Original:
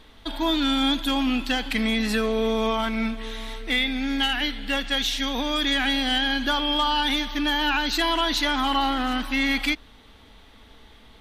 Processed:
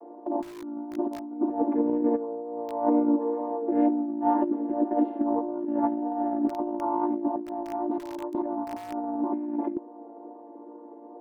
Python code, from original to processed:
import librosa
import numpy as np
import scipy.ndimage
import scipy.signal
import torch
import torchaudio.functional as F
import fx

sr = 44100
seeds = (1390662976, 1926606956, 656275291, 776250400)

p1 = fx.chord_vocoder(x, sr, chord='major triad', root=58)
p2 = scipy.signal.sosfilt(scipy.signal.cheby1(3, 1.0, [320.0, 880.0], 'bandpass', fs=sr, output='sos'), p1)
p3 = (np.mod(10.0 ** (21.0 / 20.0) * p2 + 1.0, 2.0) - 1.0) / 10.0 ** (21.0 / 20.0)
p4 = p2 + (p3 * librosa.db_to_amplitude(-5.5))
p5 = fx.wow_flutter(p4, sr, seeds[0], rate_hz=2.1, depth_cents=19.0)
p6 = fx.over_compress(p5, sr, threshold_db=-33.0, ratio=-0.5)
y = p6 * librosa.db_to_amplitude(7.0)